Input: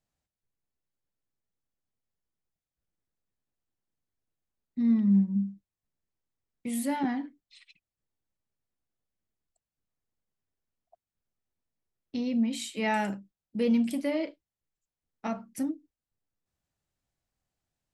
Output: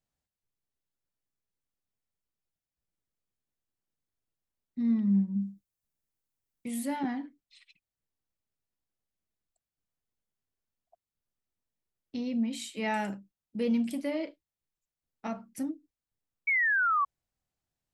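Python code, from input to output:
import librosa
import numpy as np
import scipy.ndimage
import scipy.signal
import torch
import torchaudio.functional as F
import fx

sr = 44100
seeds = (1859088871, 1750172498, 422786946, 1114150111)

y = fx.high_shelf(x, sr, hz=6500.0, db=10.5, at=(5.41, 6.68))
y = fx.spec_paint(y, sr, seeds[0], shape='fall', start_s=16.47, length_s=0.58, low_hz=1100.0, high_hz=2300.0, level_db=-23.0)
y = y * librosa.db_to_amplitude(-3.0)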